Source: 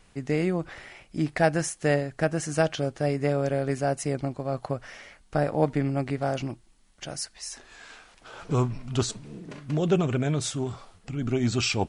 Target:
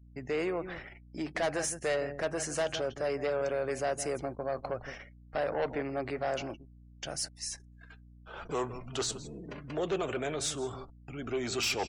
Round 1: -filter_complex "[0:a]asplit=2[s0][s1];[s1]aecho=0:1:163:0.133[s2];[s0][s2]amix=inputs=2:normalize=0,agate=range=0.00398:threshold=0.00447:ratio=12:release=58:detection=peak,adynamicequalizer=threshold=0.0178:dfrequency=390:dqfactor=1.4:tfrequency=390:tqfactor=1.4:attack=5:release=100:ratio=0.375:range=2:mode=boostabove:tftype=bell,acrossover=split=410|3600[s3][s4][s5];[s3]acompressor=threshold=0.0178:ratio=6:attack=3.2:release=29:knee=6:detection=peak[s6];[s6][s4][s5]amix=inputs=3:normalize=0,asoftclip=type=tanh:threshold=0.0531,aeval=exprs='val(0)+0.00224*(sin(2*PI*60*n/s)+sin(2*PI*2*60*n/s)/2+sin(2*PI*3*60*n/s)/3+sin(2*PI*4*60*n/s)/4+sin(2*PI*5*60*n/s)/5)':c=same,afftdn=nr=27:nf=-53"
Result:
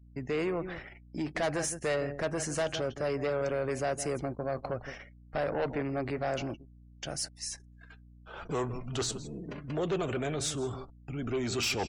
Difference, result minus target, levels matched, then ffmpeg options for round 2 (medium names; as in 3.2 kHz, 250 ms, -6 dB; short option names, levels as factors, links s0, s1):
compression: peak gain reduction -8 dB
-filter_complex "[0:a]asplit=2[s0][s1];[s1]aecho=0:1:163:0.133[s2];[s0][s2]amix=inputs=2:normalize=0,agate=range=0.00398:threshold=0.00447:ratio=12:release=58:detection=peak,adynamicequalizer=threshold=0.0178:dfrequency=390:dqfactor=1.4:tfrequency=390:tqfactor=1.4:attack=5:release=100:ratio=0.375:range=2:mode=boostabove:tftype=bell,acrossover=split=410|3600[s3][s4][s5];[s3]acompressor=threshold=0.00596:ratio=6:attack=3.2:release=29:knee=6:detection=peak[s6];[s6][s4][s5]amix=inputs=3:normalize=0,asoftclip=type=tanh:threshold=0.0531,aeval=exprs='val(0)+0.00224*(sin(2*PI*60*n/s)+sin(2*PI*2*60*n/s)/2+sin(2*PI*3*60*n/s)/3+sin(2*PI*4*60*n/s)/4+sin(2*PI*5*60*n/s)/5)':c=same,afftdn=nr=27:nf=-53"